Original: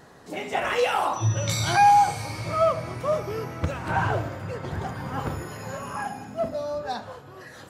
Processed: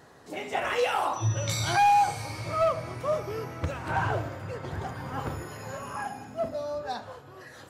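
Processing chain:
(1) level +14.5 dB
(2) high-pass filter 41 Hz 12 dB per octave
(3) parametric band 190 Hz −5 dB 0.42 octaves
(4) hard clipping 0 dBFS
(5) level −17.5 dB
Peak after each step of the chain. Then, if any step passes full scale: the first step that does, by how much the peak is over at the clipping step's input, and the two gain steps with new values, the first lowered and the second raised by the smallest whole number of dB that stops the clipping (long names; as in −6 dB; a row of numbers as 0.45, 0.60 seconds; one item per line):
+5.0, +5.0, +5.0, 0.0, −17.5 dBFS
step 1, 5.0 dB
step 1 +9.5 dB, step 5 −12.5 dB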